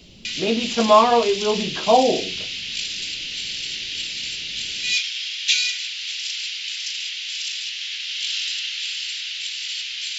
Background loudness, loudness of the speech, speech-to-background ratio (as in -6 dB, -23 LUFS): -25.0 LUFS, -19.0 LUFS, 6.0 dB